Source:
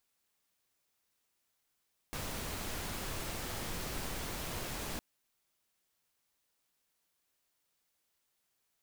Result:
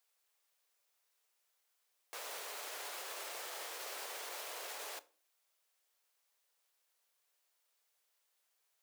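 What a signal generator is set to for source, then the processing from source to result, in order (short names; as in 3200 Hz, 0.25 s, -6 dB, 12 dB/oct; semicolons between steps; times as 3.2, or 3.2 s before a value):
noise pink, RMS -39.5 dBFS 2.86 s
steep high-pass 430 Hz 36 dB/oct; limiter -35.5 dBFS; shoebox room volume 360 m³, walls furnished, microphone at 0.34 m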